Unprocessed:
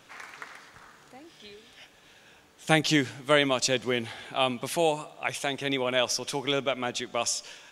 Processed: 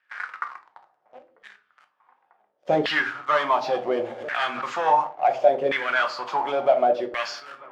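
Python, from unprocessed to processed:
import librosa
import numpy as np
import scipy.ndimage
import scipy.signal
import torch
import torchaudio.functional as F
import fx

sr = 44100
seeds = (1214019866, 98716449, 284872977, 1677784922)

p1 = fx.freq_compress(x, sr, knee_hz=3200.0, ratio=1.5)
p2 = fx.leveller(p1, sr, passes=5)
p3 = 10.0 ** (-21.0 / 20.0) * (np.abs((p2 / 10.0 ** (-21.0 / 20.0) + 3.0) % 4.0 - 2.0) - 1.0)
p4 = p2 + F.gain(torch.from_numpy(p3), -6.0).numpy()
p5 = fx.echo_wet_lowpass(p4, sr, ms=944, feedback_pct=62, hz=2100.0, wet_db=-20)
p6 = fx.room_shoebox(p5, sr, seeds[0], volume_m3=290.0, walls='furnished', distance_m=0.96)
p7 = fx.filter_lfo_bandpass(p6, sr, shape='saw_down', hz=0.7, low_hz=480.0, high_hz=1800.0, q=5.8)
p8 = fx.pre_swell(p7, sr, db_per_s=59.0, at=(4.05, 4.61), fade=0.02)
y = F.gain(torch.from_numpy(p8), 1.5).numpy()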